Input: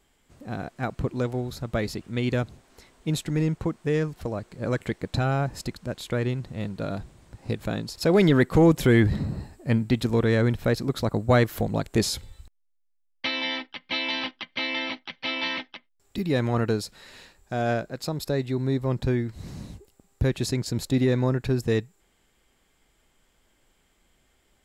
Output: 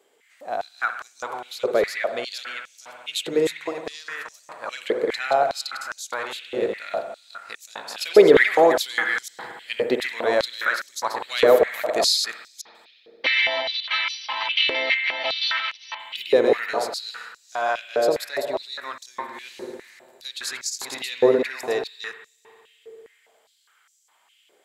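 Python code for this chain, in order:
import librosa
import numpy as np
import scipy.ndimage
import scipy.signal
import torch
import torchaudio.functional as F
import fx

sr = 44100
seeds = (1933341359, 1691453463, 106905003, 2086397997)

y = fx.reverse_delay(x, sr, ms=238, wet_db=-4)
y = fx.notch(y, sr, hz=5300.0, q=22.0)
y = fx.rev_spring(y, sr, rt60_s=2.1, pass_ms=(56,), chirp_ms=40, drr_db=7.0)
y = fx.filter_held_highpass(y, sr, hz=4.9, low_hz=450.0, high_hz=6000.0)
y = y * librosa.db_to_amplitude(1.5)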